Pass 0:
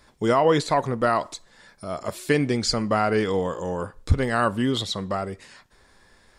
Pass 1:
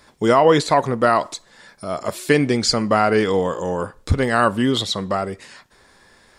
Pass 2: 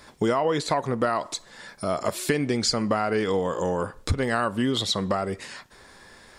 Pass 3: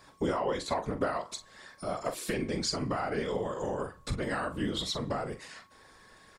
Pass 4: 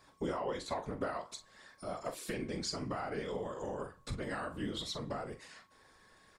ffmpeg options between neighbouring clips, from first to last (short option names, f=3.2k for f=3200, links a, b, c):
-af "lowshelf=f=72:g=-10.5,volume=5.5dB"
-af "acompressor=threshold=-24dB:ratio=5,volume=2.5dB"
-filter_complex "[0:a]afftfilt=real='hypot(re,im)*cos(2*PI*random(0))':imag='hypot(re,im)*sin(2*PI*random(1))':win_size=512:overlap=0.75,asplit=2[a][b];[b]adelay=43,volume=-10.5dB[c];[a][c]amix=inputs=2:normalize=0,aeval=exprs='val(0)+0.001*sin(2*PI*1100*n/s)':c=same,volume=-2dB"
-af "flanger=delay=2.4:depth=9.9:regen=-79:speed=0.56:shape=triangular,volume=-2dB"